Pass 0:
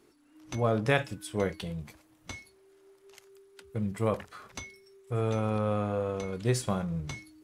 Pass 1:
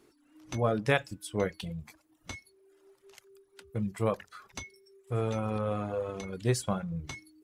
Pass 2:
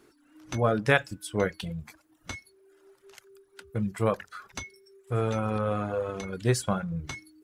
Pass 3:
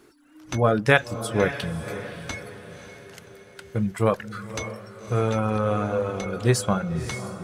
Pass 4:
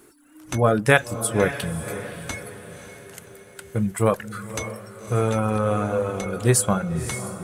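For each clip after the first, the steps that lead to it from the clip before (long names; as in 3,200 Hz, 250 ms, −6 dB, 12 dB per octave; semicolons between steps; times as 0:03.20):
reverb reduction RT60 0.77 s
parametric band 1,500 Hz +5.5 dB 0.45 octaves; level +3 dB
feedback delay with all-pass diffusion 562 ms, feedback 48%, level −11.5 dB; level +4.5 dB
high shelf with overshoot 6,800 Hz +8 dB, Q 1.5; level +1.5 dB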